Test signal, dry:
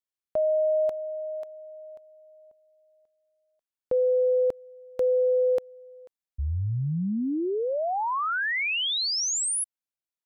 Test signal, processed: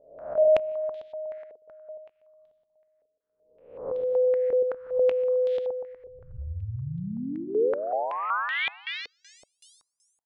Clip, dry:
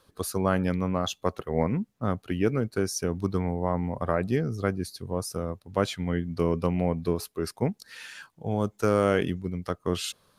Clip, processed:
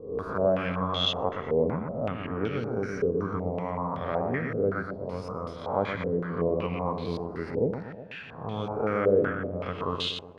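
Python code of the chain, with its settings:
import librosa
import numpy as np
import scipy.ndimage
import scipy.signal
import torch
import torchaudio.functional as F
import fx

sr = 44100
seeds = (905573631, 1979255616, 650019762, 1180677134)

p1 = fx.spec_swells(x, sr, rise_s=0.68)
p2 = fx.notch(p1, sr, hz=360.0, q=12.0)
p3 = p2 + fx.echo_feedback(p2, sr, ms=121, feedback_pct=54, wet_db=-5.5, dry=0)
p4 = fx.filter_held_lowpass(p3, sr, hz=5.3, low_hz=460.0, high_hz=3500.0)
y = p4 * librosa.db_to_amplitude(-7.0)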